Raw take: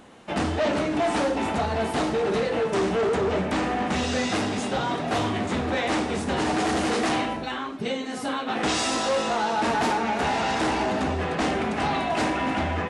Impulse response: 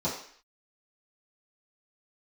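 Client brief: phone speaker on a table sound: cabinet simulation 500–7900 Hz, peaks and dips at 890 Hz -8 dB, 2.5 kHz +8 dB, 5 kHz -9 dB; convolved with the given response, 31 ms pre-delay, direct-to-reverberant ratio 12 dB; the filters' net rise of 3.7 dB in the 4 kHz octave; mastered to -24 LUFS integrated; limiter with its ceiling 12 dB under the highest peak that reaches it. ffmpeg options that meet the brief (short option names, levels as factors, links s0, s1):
-filter_complex "[0:a]equalizer=f=4000:t=o:g=4.5,alimiter=level_in=1.19:limit=0.0631:level=0:latency=1,volume=0.841,asplit=2[s0][s1];[1:a]atrim=start_sample=2205,adelay=31[s2];[s1][s2]afir=irnorm=-1:irlink=0,volume=0.0944[s3];[s0][s3]amix=inputs=2:normalize=0,highpass=f=500:w=0.5412,highpass=f=500:w=1.3066,equalizer=f=890:t=q:w=4:g=-8,equalizer=f=2500:t=q:w=4:g=8,equalizer=f=5000:t=q:w=4:g=-9,lowpass=f=7900:w=0.5412,lowpass=f=7900:w=1.3066,volume=2.99"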